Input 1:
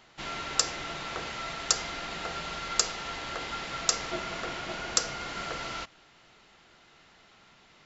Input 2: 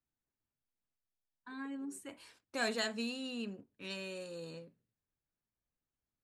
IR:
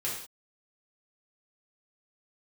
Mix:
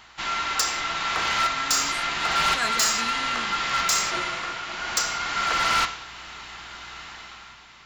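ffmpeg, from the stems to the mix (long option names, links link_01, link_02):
-filter_complex "[0:a]acontrast=60,aeval=exprs='val(0)+0.001*(sin(2*PI*60*n/s)+sin(2*PI*2*60*n/s)/2+sin(2*PI*3*60*n/s)/3+sin(2*PI*4*60*n/s)/4+sin(2*PI*5*60*n/s)/5)':channel_layout=same,volume=0.5dB,asplit=2[link_01][link_02];[link_02]volume=-11dB[link_03];[1:a]volume=-0.5dB,asplit=2[link_04][link_05];[link_05]apad=whole_len=346584[link_06];[link_01][link_06]sidechaincompress=threshold=-58dB:ratio=4:attack=12:release=319[link_07];[2:a]atrim=start_sample=2205[link_08];[link_03][link_08]afir=irnorm=-1:irlink=0[link_09];[link_07][link_04][link_09]amix=inputs=3:normalize=0,lowshelf=frequency=730:width_type=q:width=1.5:gain=-7.5,dynaudnorm=framelen=100:gausssize=13:maxgain=10dB,asoftclip=type=hard:threshold=-17dB"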